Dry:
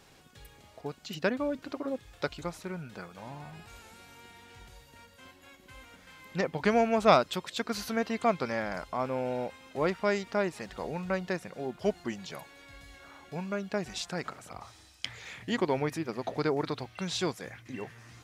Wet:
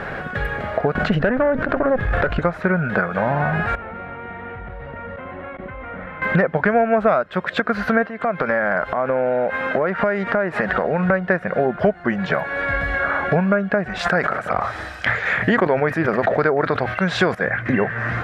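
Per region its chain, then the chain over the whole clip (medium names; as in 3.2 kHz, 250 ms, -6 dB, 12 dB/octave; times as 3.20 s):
0.95–2.40 s: tilt EQ -1.5 dB/octave + valve stage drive 30 dB, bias 0.8 + level flattener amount 70%
3.75–6.22 s: band-stop 1.6 kHz, Q 5.1 + level held to a coarse grid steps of 20 dB + distance through air 460 m
8.06–11.10 s: high-pass 140 Hz 6 dB/octave + compression 4:1, threshold -44 dBFS
13.99–17.35 s: tone controls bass -3 dB, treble +7 dB + decay stretcher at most 96 dB/s
whole clip: FFT filter 130 Hz 0 dB, 200 Hz +4 dB, 290 Hz -3 dB, 620 Hz +8 dB, 930 Hz 0 dB, 1.6 kHz +11 dB, 2.5 kHz -5 dB, 6.4 kHz -26 dB; compression 6:1, threshold -43 dBFS; loudness maximiser +32.5 dB; trim -5.5 dB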